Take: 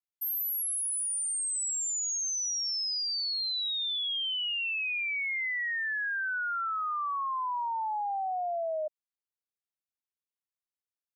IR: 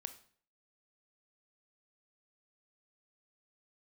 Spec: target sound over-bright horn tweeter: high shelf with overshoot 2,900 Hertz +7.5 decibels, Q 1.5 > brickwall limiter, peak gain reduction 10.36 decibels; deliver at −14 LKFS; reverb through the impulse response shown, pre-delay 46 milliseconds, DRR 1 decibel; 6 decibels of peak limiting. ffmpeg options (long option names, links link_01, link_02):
-filter_complex "[0:a]alimiter=level_in=11dB:limit=-24dB:level=0:latency=1,volume=-11dB,asplit=2[link_01][link_02];[1:a]atrim=start_sample=2205,adelay=46[link_03];[link_02][link_03]afir=irnorm=-1:irlink=0,volume=2.5dB[link_04];[link_01][link_04]amix=inputs=2:normalize=0,highshelf=frequency=2900:width_type=q:width=1.5:gain=7.5,volume=19.5dB,alimiter=limit=-10dB:level=0:latency=1"